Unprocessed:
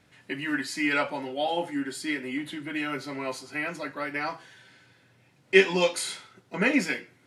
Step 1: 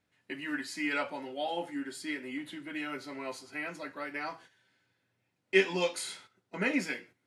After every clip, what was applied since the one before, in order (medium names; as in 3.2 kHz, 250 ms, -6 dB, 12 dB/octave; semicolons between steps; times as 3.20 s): gate -47 dBFS, range -10 dB; peaking EQ 140 Hz -8.5 dB 0.2 oct; trim -6.5 dB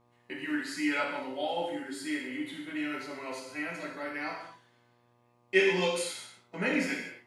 gated-style reverb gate 280 ms falling, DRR -1.5 dB; mains buzz 120 Hz, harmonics 10, -66 dBFS -2 dB/octave; trim -2 dB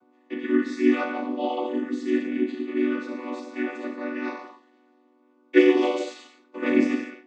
vocoder on a held chord minor triad, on B3; trim +8.5 dB